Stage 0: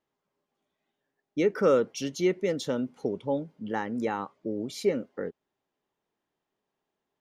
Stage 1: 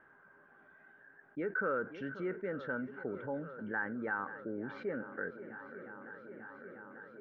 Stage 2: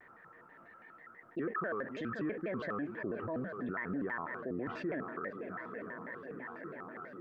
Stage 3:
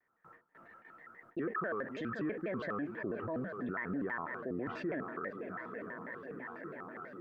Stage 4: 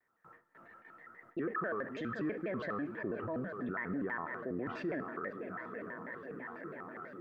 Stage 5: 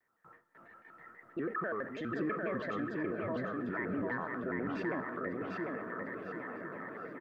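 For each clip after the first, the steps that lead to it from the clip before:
transistor ladder low-pass 1,600 Hz, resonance 90%; feedback echo with a long and a short gap by turns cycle 893 ms, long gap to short 1.5 to 1, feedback 63%, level −23.5 dB; envelope flattener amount 50%; level −2.5 dB
brickwall limiter −33.5 dBFS, peak gain reduction 9.5 dB; pitch modulation by a square or saw wave square 6.1 Hz, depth 250 cents; level +4.5 dB
noise gate with hold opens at −48 dBFS
four-comb reverb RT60 0.94 s, combs from 26 ms, DRR 18 dB
repeating echo 748 ms, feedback 30%, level −3 dB

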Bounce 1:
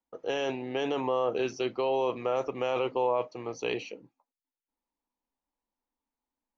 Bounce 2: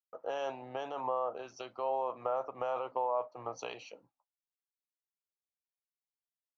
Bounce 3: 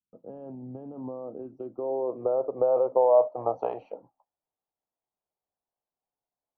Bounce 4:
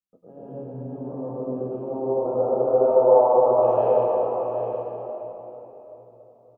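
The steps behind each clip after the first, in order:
downward compressor 12 to 1, threshold −35 dBFS, peak gain reduction 13 dB; flat-topped bell 900 Hz +13.5 dB; multiband upward and downward expander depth 100%; level −5 dB
low-pass filter sweep 210 Hz → 770 Hz, 0:00.79–0:03.71; level +8.5 dB
flanger 0.68 Hz, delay 9.6 ms, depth 9 ms, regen +50%; single-tap delay 771 ms −8.5 dB; convolution reverb RT60 4.0 s, pre-delay 90 ms, DRR −10.5 dB

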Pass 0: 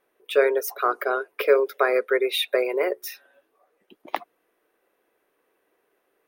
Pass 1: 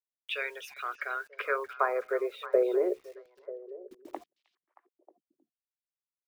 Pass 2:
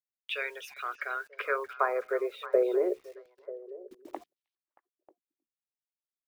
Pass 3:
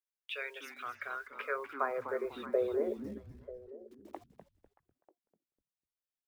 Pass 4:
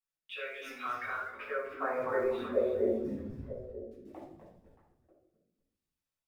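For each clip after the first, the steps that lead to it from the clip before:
band-pass filter sweep 2,700 Hz → 350 Hz, 0:00.85–0:02.85; bit reduction 10 bits; echo through a band-pass that steps 313 ms, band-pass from 3,600 Hz, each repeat −1.4 octaves, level −10 dB
noise gate −60 dBFS, range −18 dB
echo with shifted repeats 249 ms, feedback 32%, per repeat −150 Hz, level −10.5 dB; level −6 dB
rotating-speaker cabinet horn 0.8 Hz; rectangular room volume 1,000 cubic metres, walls furnished, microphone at 9.4 metres; level −5.5 dB

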